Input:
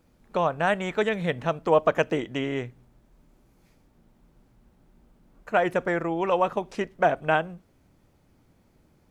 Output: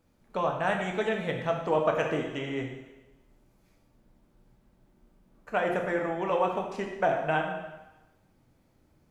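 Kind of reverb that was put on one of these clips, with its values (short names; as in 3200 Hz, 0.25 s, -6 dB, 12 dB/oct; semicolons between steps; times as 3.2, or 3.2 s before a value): plate-style reverb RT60 1.1 s, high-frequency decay 0.95×, DRR 1 dB; gain -6 dB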